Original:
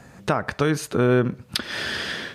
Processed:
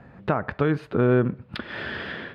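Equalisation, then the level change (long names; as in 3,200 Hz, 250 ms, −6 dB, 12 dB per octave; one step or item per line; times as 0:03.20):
high-frequency loss of the air 440 metres
0.0 dB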